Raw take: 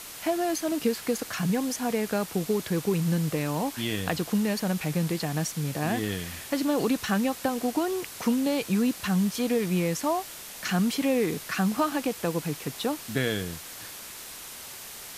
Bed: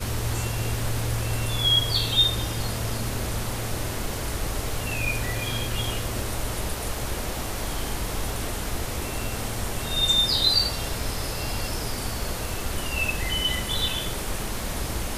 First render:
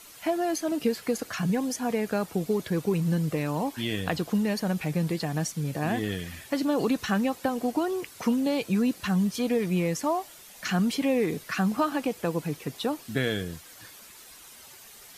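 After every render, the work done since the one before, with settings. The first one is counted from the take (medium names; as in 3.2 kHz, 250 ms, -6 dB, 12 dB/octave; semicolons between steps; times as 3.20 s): noise reduction 10 dB, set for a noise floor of -42 dBFS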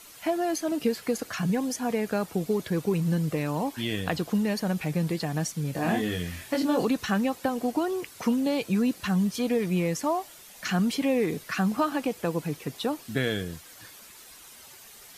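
5.73–6.85 s: doubling 23 ms -3 dB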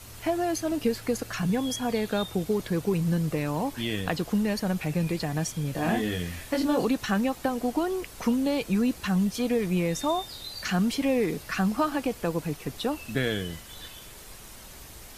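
add bed -19 dB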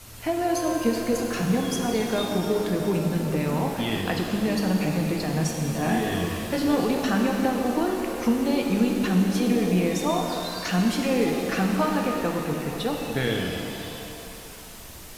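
pitch-shifted reverb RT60 2.9 s, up +7 st, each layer -8 dB, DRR 1 dB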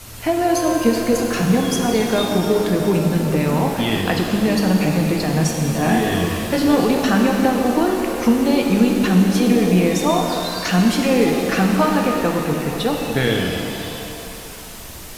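trim +7 dB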